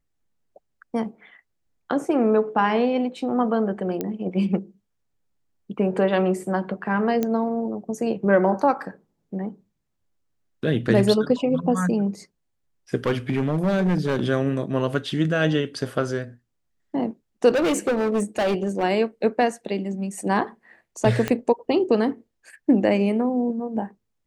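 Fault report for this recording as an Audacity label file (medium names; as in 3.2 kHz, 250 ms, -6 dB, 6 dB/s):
4.010000	4.010000	pop -13 dBFS
7.230000	7.230000	pop -11 dBFS
13.060000	14.230000	clipped -17 dBFS
17.490000	18.840000	clipped -18 dBFS
21.280000	21.280000	pop -10 dBFS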